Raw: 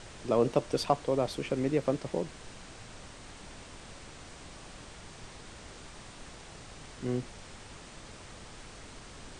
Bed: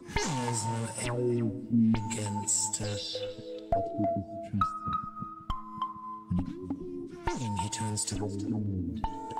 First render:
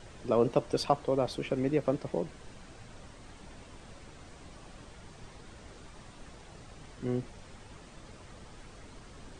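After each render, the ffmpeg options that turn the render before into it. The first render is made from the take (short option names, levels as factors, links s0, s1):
-af "afftdn=nr=7:nf=-49"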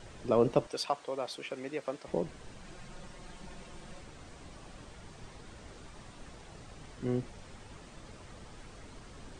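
-filter_complex "[0:a]asettb=1/sr,asplit=3[s0][s1][s2];[s0]atrim=end=0.674[s3];[s1]atrim=start=0.67:end=2.08,asetpts=PTS-STARTPTS,afade=t=in:d=0.004:c=qsin,afade=t=out:st=1.406:d=0.004:c=qsin,highpass=f=1100:p=1[s4];[s2]atrim=start=2.076[s5];[s3][s4]acrossfade=d=0.004:c1=hsin:c2=qsin[s6];[s6][s5]acrossfade=d=0.004:c1=qsin:c2=hsin,asettb=1/sr,asplit=3[s7][s8][s9];[s7]atrim=end=2.644[s10];[s8]atrim=start=2.64:end=4.01,asetpts=PTS-STARTPTS,afade=t=in:d=0.004:c=qsin,afade=t=out:st=1.366:d=0.004:c=qsin,aecho=1:1:5.6:0.65,atrim=end_sample=60417[s11];[s9]atrim=start=4.006[s12];[s10][s11]acrossfade=d=0.004:c1=hsin:c2=qsin[s13];[s13][s12]acrossfade=d=0.004:c1=qsin:c2=hsin"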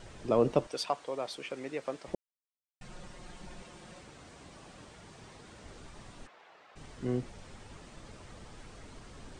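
-filter_complex "[0:a]asettb=1/sr,asplit=3[s0][s1][s2];[s0]atrim=end=3.624[s3];[s1]atrim=start=3.62:end=5.64,asetpts=PTS-STARTPTS,afade=t=in:d=0.004:c=qsin,afade=t=out:st=2.016:d=0.004:c=qsin,highpass=f=110:p=1[s4];[s2]atrim=start=5.636[s5];[s3][s4]acrossfade=d=0.004:c1=hsin:c2=qsin[s6];[s6][s5]acrossfade=d=0.004:c1=qsin:c2=hsin,asplit=3[s7][s8][s9];[s7]afade=t=out:st=6.26:d=0.02[s10];[s8]highpass=690,lowpass=2700,afade=t=in:st=6.26:d=0.02,afade=t=out:st=6.75:d=0.02[s11];[s9]afade=t=in:st=6.75:d=0.02[s12];[s10][s11][s12]amix=inputs=3:normalize=0,asplit=3[s13][s14][s15];[s13]atrim=end=2.15,asetpts=PTS-STARTPTS,afade=t=out:st=2.146:d=0.004:c=hsin[s16];[s14]atrim=start=2.15:end=2.81,asetpts=PTS-STARTPTS,volume=0[s17];[s15]atrim=start=2.81,asetpts=PTS-STARTPTS,afade=t=in:d=0.004:c=hsin[s18];[s16][s17][s18]concat=n=3:v=0:a=1"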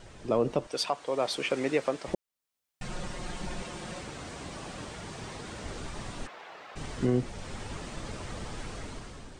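-af "dynaudnorm=f=140:g=9:m=3.55,alimiter=limit=0.168:level=0:latency=1:release=500"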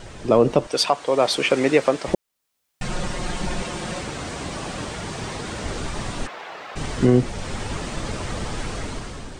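-af "volume=3.35"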